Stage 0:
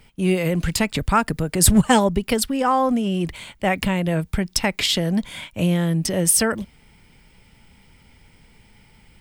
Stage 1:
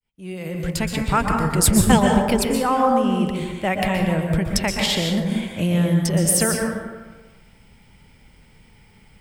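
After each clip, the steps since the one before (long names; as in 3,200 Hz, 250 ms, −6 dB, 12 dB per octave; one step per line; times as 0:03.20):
fade in at the beginning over 1.12 s
dense smooth reverb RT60 1.3 s, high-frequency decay 0.4×, pre-delay 110 ms, DRR 1 dB
level −2 dB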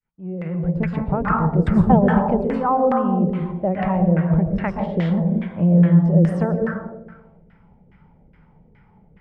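parametric band 170 Hz +9 dB 0.44 octaves
auto-filter low-pass saw down 2.4 Hz 440–1,800 Hz
level −3.5 dB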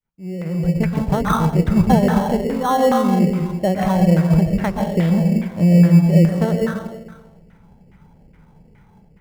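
automatic gain control gain up to 3 dB
in parallel at −8.5 dB: decimation without filtering 18×
on the sum: level −2 dB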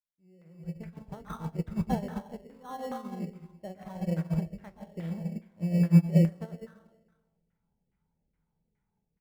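on a send: ambience of single reflections 24 ms −13 dB, 43 ms −14.5 dB
on the sum: expander for the loud parts 2.5 to 1, over −21 dBFS
level −7.5 dB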